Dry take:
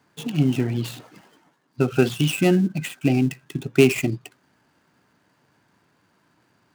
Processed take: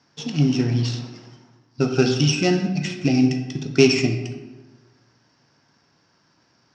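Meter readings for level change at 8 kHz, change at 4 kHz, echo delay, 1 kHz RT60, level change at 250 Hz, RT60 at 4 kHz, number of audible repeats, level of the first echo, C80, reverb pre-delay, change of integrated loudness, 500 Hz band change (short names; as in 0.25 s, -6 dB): +3.5 dB, +5.5 dB, none, 1.2 s, +1.5 dB, 0.75 s, none, none, 9.0 dB, 3 ms, +1.5 dB, +0.5 dB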